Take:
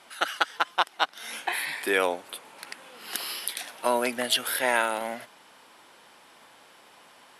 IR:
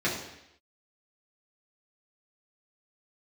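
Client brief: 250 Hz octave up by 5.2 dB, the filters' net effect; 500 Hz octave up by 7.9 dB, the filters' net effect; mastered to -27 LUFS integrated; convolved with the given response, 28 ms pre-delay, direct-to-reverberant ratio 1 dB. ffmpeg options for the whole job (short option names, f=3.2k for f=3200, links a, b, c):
-filter_complex "[0:a]equalizer=f=250:t=o:g=3,equalizer=f=500:t=o:g=9,asplit=2[a][b];[1:a]atrim=start_sample=2205,adelay=28[c];[b][c]afir=irnorm=-1:irlink=0,volume=-12.5dB[d];[a][d]amix=inputs=2:normalize=0,volume=-5dB"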